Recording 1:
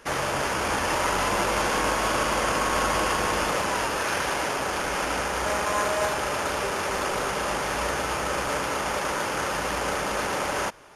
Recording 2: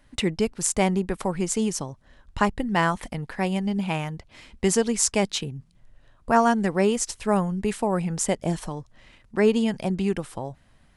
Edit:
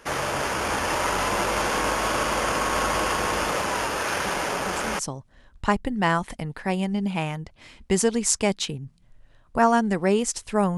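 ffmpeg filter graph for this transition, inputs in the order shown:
ffmpeg -i cue0.wav -i cue1.wav -filter_complex "[1:a]asplit=2[link_01][link_02];[0:a]apad=whole_dur=10.77,atrim=end=10.77,atrim=end=4.992[link_03];[link_02]atrim=start=1.718:end=7.5[link_04];[link_01]atrim=start=0.98:end=1.72,asetpts=PTS-STARTPTS,volume=-12dB,afade=type=in:duration=0.004:curve=hsin,afade=type=out:start_time=0.736:duration=0.004:curve=hsin,adelay=187425S[link_05];[link_03][link_04]acrossfade=duration=0.004:curve1=hsin:curve2=hsin[link_06];[link_06][link_05]amix=inputs=2:normalize=0" out.wav

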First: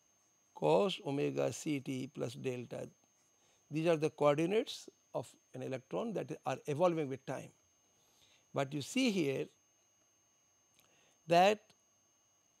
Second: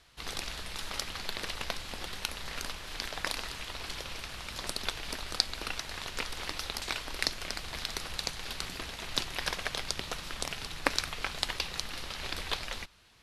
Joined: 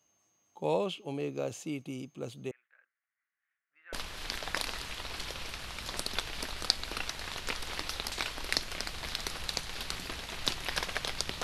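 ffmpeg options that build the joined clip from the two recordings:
ffmpeg -i cue0.wav -i cue1.wav -filter_complex "[0:a]asettb=1/sr,asplit=3[link_01][link_02][link_03];[link_01]atrim=end=2.514[link_04];[link_02]atrim=start=2.51:end=3.93,asetpts=PTS-STARTPTS,afade=type=in:duration=0.004:curve=qsin,afade=type=out:start_time=1.416:duration=0.004:curve=qsin,asuperpass=centerf=1700:order=4:qfactor=3.2[link_05];[link_03]atrim=start=3.926[link_06];[link_04][link_05]acrossfade=duration=0.004:curve1=hsin:curve2=qsin[link_07];[link_07][link_06]acrossfade=duration=0.004:curve1=qsin:curve2=hsin,apad=whole_dur=11.43,atrim=end=11.43,atrim=end=3.932[link_08];[1:a]atrim=start=2.628:end=10.13[link_09];[link_08][link_09]acrossfade=duration=0.004:curve1=hsin:curve2=hsin" out.wav

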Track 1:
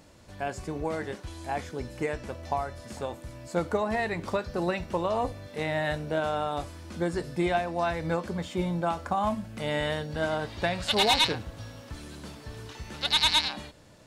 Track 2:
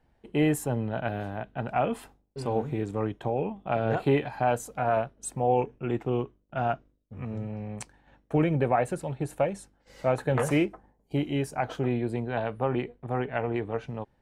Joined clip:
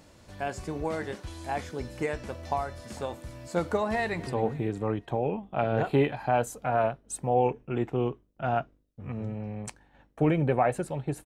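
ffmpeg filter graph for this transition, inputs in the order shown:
ffmpeg -i cue0.wav -i cue1.wav -filter_complex "[0:a]apad=whole_dur=11.25,atrim=end=11.25,atrim=end=4.272[link_01];[1:a]atrim=start=2.398:end=9.38[link_02];[link_01][link_02]acrossfade=duration=0.004:curve1=hsin:curve2=hsin,asplit=2[link_03][link_04];[link_04]afade=type=in:start_time=3.93:duration=0.01,afade=type=out:start_time=4.27:duration=0.01,aecho=0:1:260|520|780|1040:0.125893|0.0566516|0.0254932|0.011472[link_05];[link_03][link_05]amix=inputs=2:normalize=0" out.wav

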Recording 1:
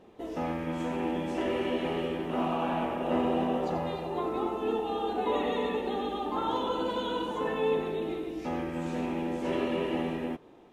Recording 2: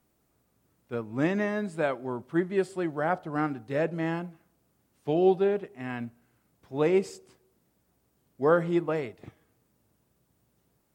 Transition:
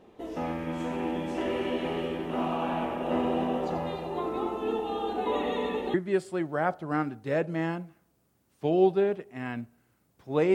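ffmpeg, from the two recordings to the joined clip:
ffmpeg -i cue0.wav -i cue1.wav -filter_complex "[0:a]apad=whole_dur=10.54,atrim=end=10.54,atrim=end=5.942[link_01];[1:a]atrim=start=2.378:end=6.98[link_02];[link_01][link_02]acrossfade=duration=0.004:curve1=hsin:curve2=hsin" out.wav

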